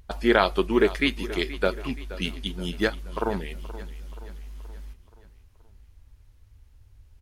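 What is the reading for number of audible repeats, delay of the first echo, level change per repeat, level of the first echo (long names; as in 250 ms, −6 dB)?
4, 476 ms, −6.0 dB, −16.0 dB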